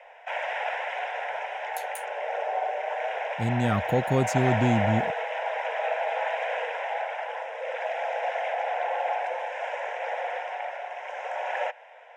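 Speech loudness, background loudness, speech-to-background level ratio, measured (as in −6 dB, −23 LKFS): −26.5 LKFS, −30.5 LKFS, 4.0 dB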